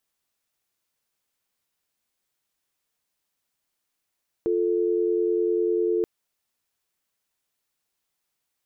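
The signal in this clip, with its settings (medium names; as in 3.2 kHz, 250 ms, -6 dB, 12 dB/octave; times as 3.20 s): call progress tone dial tone, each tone -23 dBFS 1.58 s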